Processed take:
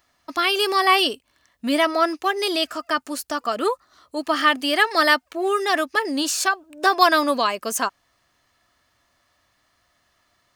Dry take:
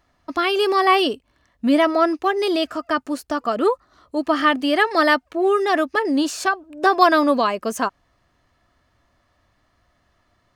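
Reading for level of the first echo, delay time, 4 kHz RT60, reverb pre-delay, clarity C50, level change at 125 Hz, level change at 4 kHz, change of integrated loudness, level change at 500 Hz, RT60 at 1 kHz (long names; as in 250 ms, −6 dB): no echo audible, no echo audible, no reverb audible, no reverb audible, no reverb audible, can't be measured, +4.0 dB, −1.0 dB, −4.0 dB, no reverb audible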